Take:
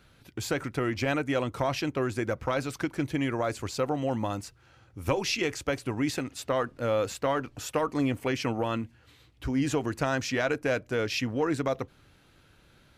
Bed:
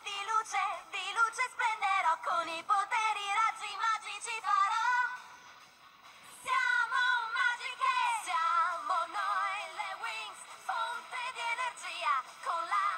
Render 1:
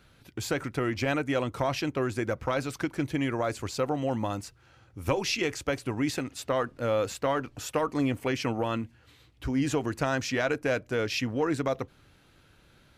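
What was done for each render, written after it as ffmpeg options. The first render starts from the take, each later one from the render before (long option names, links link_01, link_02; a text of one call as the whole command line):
ffmpeg -i in.wav -af anull out.wav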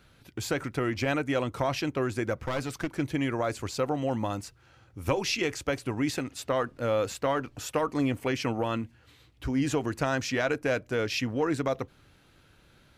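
ffmpeg -i in.wav -filter_complex "[0:a]asettb=1/sr,asplit=3[link_01][link_02][link_03];[link_01]atrim=end=2.384[link_04];[link_02]atrim=start=2.38:end=2.95,asetpts=PTS-STARTPTS,afade=type=in:duration=0.004:curve=qsin,afade=type=out:start_time=0.566:duration=0.004:curve=qsin,aeval=exprs='clip(val(0),-1,0.0251)':channel_layout=same[link_05];[link_03]atrim=start=2.946[link_06];[link_04][link_05]acrossfade=duration=0.004:curve1=hsin:curve2=qsin[link_07];[link_07][link_06]acrossfade=duration=0.004:curve1=qsin:curve2=hsin" out.wav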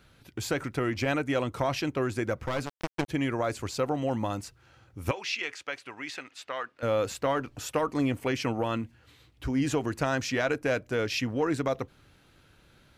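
ffmpeg -i in.wav -filter_complex "[0:a]asplit=3[link_01][link_02][link_03];[link_01]afade=type=out:start_time=2.65:duration=0.02[link_04];[link_02]acrusher=bits=3:mix=0:aa=0.5,afade=type=in:start_time=2.65:duration=0.02,afade=type=out:start_time=3.08:duration=0.02[link_05];[link_03]afade=type=in:start_time=3.08:duration=0.02[link_06];[link_04][link_05][link_06]amix=inputs=3:normalize=0,asettb=1/sr,asplit=3[link_07][link_08][link_09];[link_07]atrim=end=5.114[link_10];[link_08]atrim=start=5.11:end=6.83,asetpts=PTS-STARTPTS,afade=type=in:duration=0.004:curve=qsin,afade=type=out:start_time=1.716:duration=0.004:curve=qsin,bandpass=frequency=2200:width_type=q:width=0.8[link_11];[link_09]atrim=start=6.826[link_12];[link_10][link_11]acrossfade=duration=0.004:curve1=hsin:curve2=qsin[link_13];[link_13][link_12]acrossfade=duration=0.004:curve1=qsin:curve2=hsin" out.wav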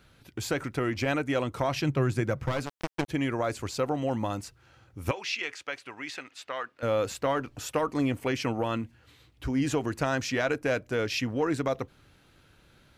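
ffmpeg -i in.wav -filter_complex "[0:a]asettb=1/sr,asplit=3[link_01][link_02][link_03];[link_01]atrim=end=1.764[link_04];[link_02]atrim=start=1.76:end=2.52,asetpts=PTS-STARTPTS,afade=type=in:duration=0.004:curve=qsin,afade=type=out:start_time=0.756:duration=0.004:curve=qsin,equalizer=frequency=140:width=2.5:gain=11.5[link_05];[link_03]atrim=start=2.516[link_06];[link_04][link_05]acrossfade=duration=0.004:curve1=hsin:curve2=qsin[link_07];[link_07][link_06]acrossfade=duration=0.004:curve1=qsin:curve2=hsin" out.wav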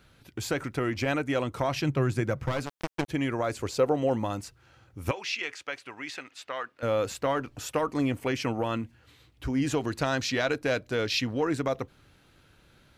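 ffmpeg -i in.wav -filter_complex "[0:a]asettb=1/sr,asplit=3[link_01][link_02][link_03];[link_01]atrim=end=3.604[link_04];[link_02]atrim=start=3.6:end=4.2,asetpts=PTS-STARTPTS,afade=type=in:duration=0.004:curve=qsin,afade=type=out:start_time=0.596:duration=0.004:curve=qsin,equalizer=frequency=460:width_type=o:width=0.77:gain=7[link_05];[link_03]atrim=start=4.196[link_06];[link_04][link_05]acrossfade=duration=0.004:curve1=hsin:curve2=qsin[link_07];[link_07][link_06]acrossfade=duration=0.004:curve1=qsin:curve2=hsin,asettb=1/sr,asplit=3[link_08][link_09][link_10];[link_08]atrim=end=9.744[link_11];[link_09]atrim=start=9.74:end=11.41,asetpts=PTS-STARTPTS,afade=type=in:duration=0.004:curve=qsin,afade=type=out:start_time=1.666:duration=0.004:curve=qsin,equalizer=frequency=4000:width_type=o:width=0.52:gain=8.5[link_12];[link_10]atrim=start=11.406[link_13];[link_11][link_12]acrossfade=duration=0.004:curve1=hsin:curve2=qsin[link_14];[link_14][link_13]acrossfade=duration=0.004:curve1=qsin:curve2=hsin" out.wav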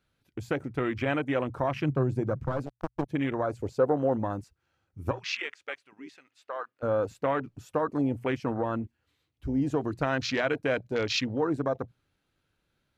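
ffmpeg -i in.wav -af "bandreject=frequency=60:width_type=h:width=6,bandreject=frequency=120:width_type=h:width=6,afwtdn=0.02" out.wav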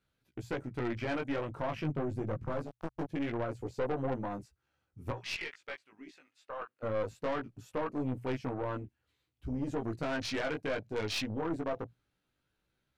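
ffmpeg -i in.wav -af "flanger=delay=15.5:depth=3.7:speed=0.23,aeval=exprs='(tanh(25.1*val(0)+0.45)-tanh(0.45))/25.1':channel_layout=same" out.wav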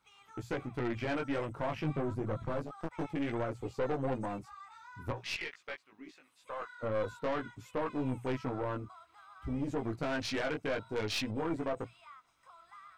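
ffmpeg -i in.wav -i bed.wav -filter_complex "[1:a]volume=-23dB[link_01];[0:a][link_01]amix=inputs=2:normalize=0" out.wav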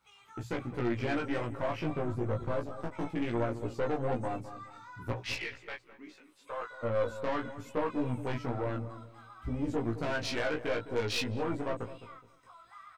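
ffmpeg -i in.wav -filter_complex "[0:a]asplit=2[link_01][link_02];[link_02]adelay=17,volume=-3dB[link_03];[link_01][link_03]amix=inputs=2:normalize=0,asplit=2[link_04][link_05];[link_05]adelay=210,lowpass=frequency=900:poles=1,volume=-11.5dB,asplit=2[link_06][link_07];[link_07]adelay=210,lowpass=frequency=900:poles=1,volume=0.34,asplit=2[link_08][link_09];[link_09]adelay=210,lowpass=frequency=900:poles=1,volume=0.34,asplit=2[link_10][link_11];[link_11]adelay=210,lowpass=frequency=900:poles=1,volume=0.34[link_12];[link_04][link_06][link_08][link_10][link_12]amix=inputs=5:normalize=0" out.wav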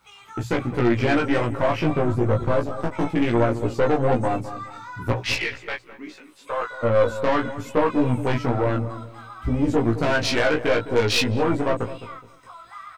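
ffmpeg -i in.wav -af "volume=12dB" out.wav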